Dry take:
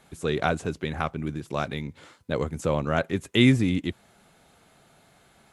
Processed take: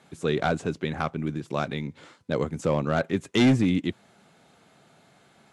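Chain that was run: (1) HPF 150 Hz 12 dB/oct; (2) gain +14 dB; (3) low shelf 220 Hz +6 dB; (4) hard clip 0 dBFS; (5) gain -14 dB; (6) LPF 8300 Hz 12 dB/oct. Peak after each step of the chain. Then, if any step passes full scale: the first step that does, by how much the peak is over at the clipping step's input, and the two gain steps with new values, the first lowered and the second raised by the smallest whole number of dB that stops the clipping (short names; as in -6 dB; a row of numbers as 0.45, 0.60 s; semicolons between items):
-6.5, +7.5, +8.5, 0.0, -14.0, -13.5 dBFS; step 2, 8.5 dB; step 2 +5 dB, step 5 -5 dB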